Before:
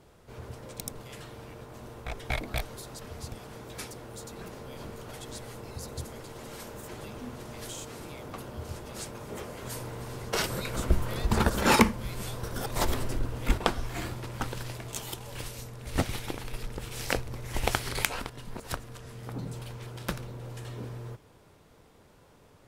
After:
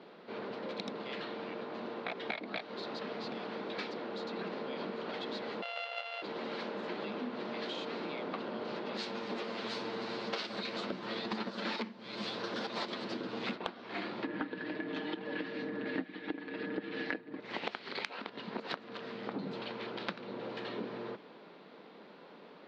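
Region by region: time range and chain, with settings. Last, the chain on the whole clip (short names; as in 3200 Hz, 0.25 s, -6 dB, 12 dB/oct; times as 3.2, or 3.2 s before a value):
5.62–6.22 sample sorter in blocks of 64 samples + brick-wall FIR high-pass 460 Hz + bell 2900 Hz +14.5 dB 0.27 oct
8.97–13.56 minimum comb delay 8.9 ms + tone controls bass +2 dB, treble +11 dB
14.24–17.4 LPF 3600 Hz + comb 6.5 ms, depth 76% + small resonant body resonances 270/1700 Hz, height 15 dB, ringing for 25 ms
whole clip: Chebyshev band-pass 190–4300 Hz, order 4; compressor 16:1, threshold -41 dBFS; gain +6.5 dB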